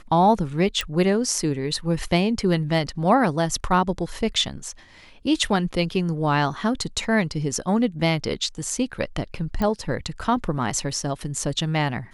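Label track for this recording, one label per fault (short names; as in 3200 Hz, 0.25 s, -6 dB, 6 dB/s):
0.810000	0.810000	pop
9.620000	9.620000	pop -13 dBFS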